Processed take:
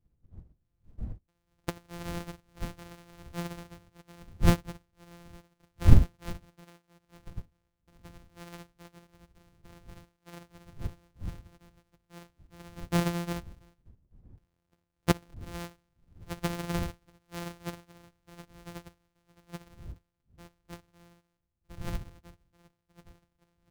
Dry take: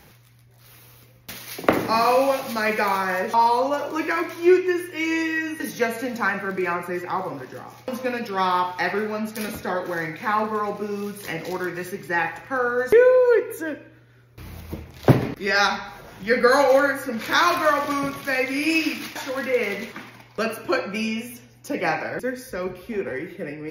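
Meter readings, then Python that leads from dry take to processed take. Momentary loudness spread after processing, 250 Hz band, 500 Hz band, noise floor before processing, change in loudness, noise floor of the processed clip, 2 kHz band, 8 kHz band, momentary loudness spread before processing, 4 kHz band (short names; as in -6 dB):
23 LU, -11.0 dB, -22.0 dB, -52 dBFS, -10.0 dB, -80 dBFS, -22.5 dB, -10.5 dB, 15 LU, -14.5 dB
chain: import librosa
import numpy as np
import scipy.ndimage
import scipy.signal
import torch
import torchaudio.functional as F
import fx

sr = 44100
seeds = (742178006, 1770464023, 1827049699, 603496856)

y = np.r_[np.sort(x[:len(x) // 256 * 256].reshape(-1, 256), axis=1).ravel(), x[len(x) // 256 * 256:]]
y = fx.dmg_wind(y, sr, seeds[0], corner_hz=93.0, level_db=-24.0)
y = fx.upward_expand(y, sr, threshold_db=-31.0, expansion=2.5)
y = y * 10.0 ** (-2.5 / 20.0)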